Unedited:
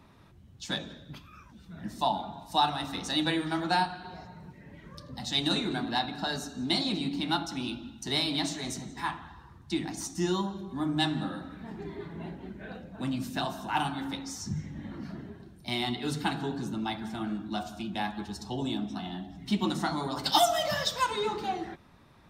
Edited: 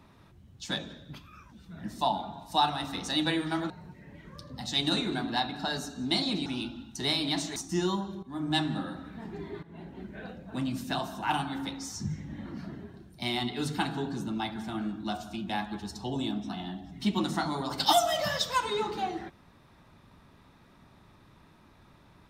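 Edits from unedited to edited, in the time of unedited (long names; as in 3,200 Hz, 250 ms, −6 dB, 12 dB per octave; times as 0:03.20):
0:03.70–0:04.29: remove
0:07.05–0:07.53: remove
0:08.63–0:10.02: remove
0:10.69–0:11.01: fade in, from −13 dB
0:12.09–0:12.49: fade in, from −14 dB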